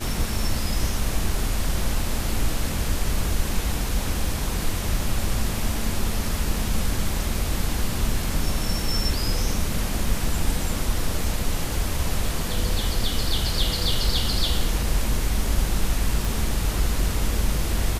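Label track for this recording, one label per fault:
16.250000	16.250000	click

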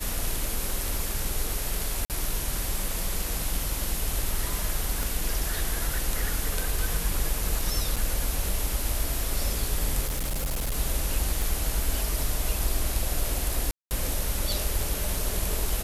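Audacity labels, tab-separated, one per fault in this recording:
2.050000	2.100000	drop-out 48 ms
5.030000	5.030000	click
7.960000	7.970000	drop-out 6 ms
10.050000	10.760000	clipping −24.5 dBFS
11.420000	11.420000	click
13.710000	13.910000	drop-out 199 ms

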